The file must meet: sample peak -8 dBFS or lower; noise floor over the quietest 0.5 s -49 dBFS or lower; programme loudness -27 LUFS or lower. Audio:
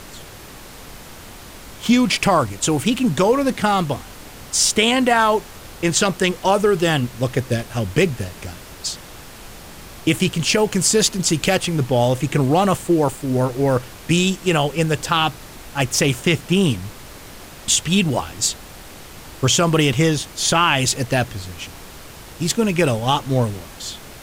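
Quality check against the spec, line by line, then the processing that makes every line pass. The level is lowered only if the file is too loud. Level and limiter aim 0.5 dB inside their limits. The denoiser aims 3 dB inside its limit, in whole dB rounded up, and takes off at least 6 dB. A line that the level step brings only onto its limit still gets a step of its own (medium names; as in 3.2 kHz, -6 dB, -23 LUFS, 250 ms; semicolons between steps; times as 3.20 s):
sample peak -4.0 dBFS: fail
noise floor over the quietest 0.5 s -39 dBFS: fail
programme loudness -18.5 LUFS: fail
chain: noise reduction 6 dB, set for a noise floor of -39 dBFS; trim -9 dB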